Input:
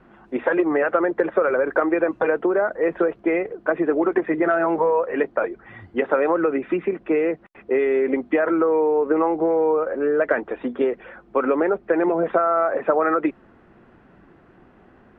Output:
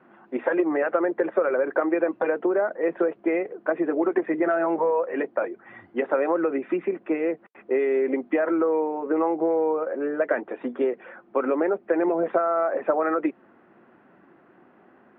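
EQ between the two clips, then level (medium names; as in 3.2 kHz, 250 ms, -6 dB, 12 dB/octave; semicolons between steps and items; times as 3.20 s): dynamic bell 1.3 kHz, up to -4 dB, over -37 dBFS, Q 1.3; band-pass 230–2600 Hz; band-stop 450 Hz, Q 13; -1.5 dB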